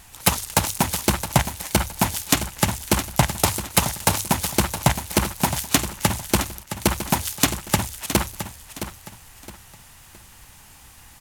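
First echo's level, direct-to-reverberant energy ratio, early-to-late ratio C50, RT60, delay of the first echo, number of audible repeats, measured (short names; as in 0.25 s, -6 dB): -11.0 dB, none, none, none, 0.666 s, 3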